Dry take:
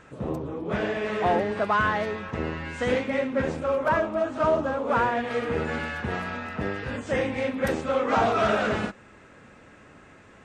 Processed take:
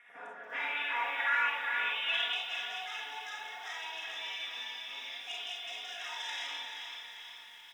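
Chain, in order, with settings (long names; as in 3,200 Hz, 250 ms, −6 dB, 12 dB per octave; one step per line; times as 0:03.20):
high-pass filter 390 Hz 6 dB per octave
comb filter 5.7 ms, depth 98%
brickwall limiter −16.5 dBFS, peak gain reduction 7.5 dB
on a send: echo with a time of its own for lows and highs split 620 Hz, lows 197 ms, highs 514 ms, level −7.5 dB
on the sum: low-pass filter sweep 9,600 Hz → 2,800 Hz, 0:00.02–0:01.02
gain into a clipping stage and back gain 17.5 dB
comb and all-pass reverb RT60 0.85 s, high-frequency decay 0.45×, pre-delay 10 ms, DRR −1.5 dB
band-pass filter sweep 1,400 Hz → 3,800 Hz, 0:02.29–0:03.49
wrong playback speed 33 rpm record played at 45 rpm
Butterworth band-reject 4,400 Hz, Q 2.6
feedback echo at a low word length 436 ms, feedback 55%, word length 9 bits, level −8.5 dB
level −5 dB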